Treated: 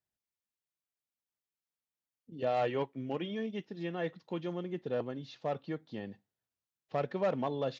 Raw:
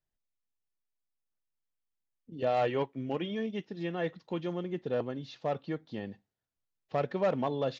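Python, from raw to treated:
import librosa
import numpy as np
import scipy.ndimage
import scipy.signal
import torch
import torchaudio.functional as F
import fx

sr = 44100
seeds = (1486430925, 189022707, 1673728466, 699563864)

y = scipy.signal.sosfilt(scipy.signal.butter(2, 74.0, 'highpass', fs=sr, output='sos'), x)
y = y * librosa.db_to_amplitude(-2.5)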